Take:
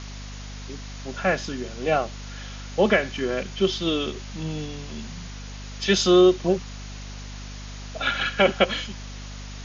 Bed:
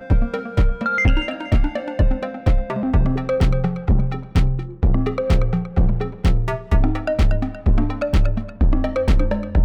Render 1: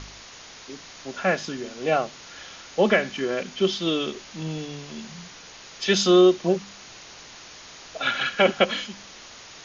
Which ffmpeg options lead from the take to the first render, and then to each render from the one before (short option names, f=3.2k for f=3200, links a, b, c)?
-af "bandreject=f=50:t=h:w=4,bandreject=f=100:t=h:w=4,bandreject=f=150:t=h:w=4,bandreject=f=200:t=h:w=4,bandreject=f=250:t=h:w=4"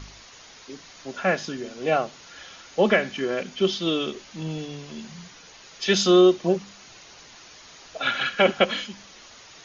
-af "afftdn=nr=6:nf=-45"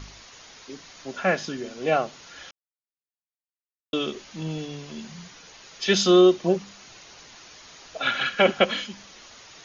-filter_complex "[0:a]asplit=3[a][b][c];[a]atrim=end=2.51,asetpts=PTS-STARTPTS,afade=t=out:st=2.506:d=0.004:c=hsin[d];[b]atrim=start=2.51:end=3.93,asetpts=PTS-STARTPTS,volume=0[e];[c]atrim=start=3.93,asetpts=PTS-STARTPTS,afade=t=in:d=0.004:c=hsin[f];[d][e][f]concat=n=3:v=0:a=1"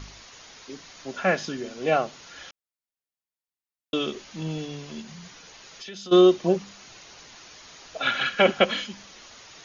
-filter_complex "[0:a]asplit=3[a][b][c];[a]afade=t=out:st=5.01:d=0.02[d];[b]acompressor=threshold=-38dB:ratio=6:attack=3.2:release=140:knee=1:detection=peak,afade=t=in:st=5.01:d=0.02,afade=t=out:st=6.11:d=0.02[e];[c]afade=t=in:st=6.11:d=0.02[f];[d][e][f]amix=inputs=3:normalize=0"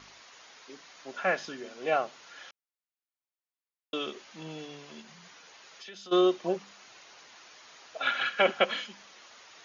-af "highpass=f=850:p=1,highshelf=f=2.9k:g=-9.5"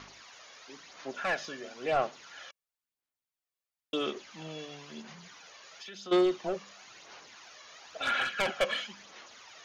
-af "asoftclip=type=tanh:threshold=-24dB,aphaser=in_gain=1:out_gain=1:delay=1.8:decay=0.43:speed=0.98:type=sinusoidal"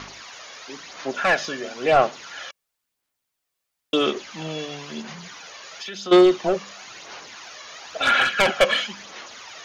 -af "volume=11.5dB"